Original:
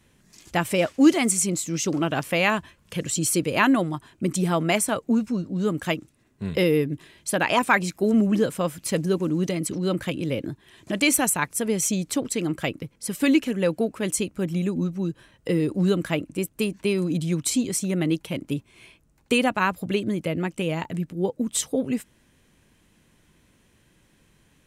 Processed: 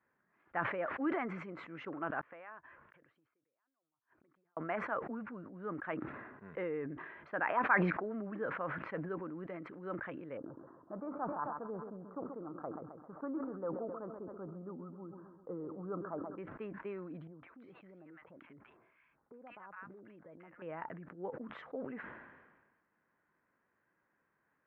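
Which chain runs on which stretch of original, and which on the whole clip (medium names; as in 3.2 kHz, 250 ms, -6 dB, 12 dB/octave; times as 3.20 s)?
2.21–4.57 s: peaking EQ 190 Hz -8 dB 0.36 oct + compression 10:1, threshold -29 dBFS + inverted gate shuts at -33 dBFS, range -42 dB
10.37–16.38 s: Chebyshev low-pass 1.3 kHz, order 5 + feedback delay 132 ms, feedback 55%, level -14 dB
17.27–20.62 s: compression, threshold -33 dBFS + bands offset in time lows, highs 160 ms, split 990 Hz
whole clip: steep low-pass 1.6 kHz 36 dB/octave; differentiator; decay stretcher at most 42 dB/s; trim +7 dB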